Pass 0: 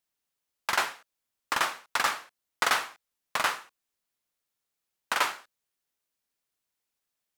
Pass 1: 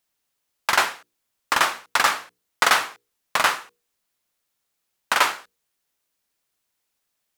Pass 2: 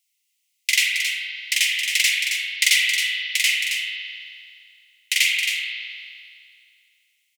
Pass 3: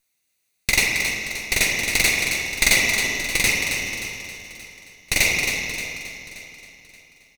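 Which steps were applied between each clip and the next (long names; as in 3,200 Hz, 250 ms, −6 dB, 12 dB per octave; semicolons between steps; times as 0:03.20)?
mains-hum notches 60/120/180/240/300/360/420/480 Hz; level +7.5 dB
Chebyshev high-pass with heavy ripple 2,000 Hz, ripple 3 dB; single-tap delay 270 ms −7 dB; spring reverb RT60 2.2 s, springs 37 ms, chirp 50 ms, DRR −1.5 dB; level +6 dB
lower of the sound and its delayed copy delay 0.48 ms; repeating echo 577 ms, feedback 35%, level −13.5 dB; level +1.5 dB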